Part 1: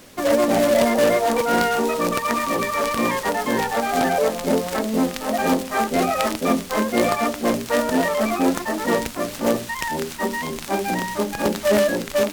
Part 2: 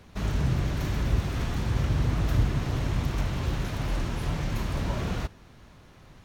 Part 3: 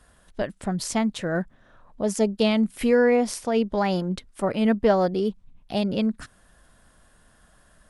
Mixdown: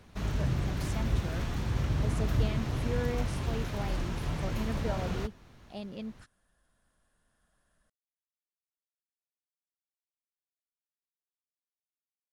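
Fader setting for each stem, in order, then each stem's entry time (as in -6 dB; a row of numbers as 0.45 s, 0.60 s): mute, -4.0 dB, -16.5 dB; mute, 0.00 s, 0.00 s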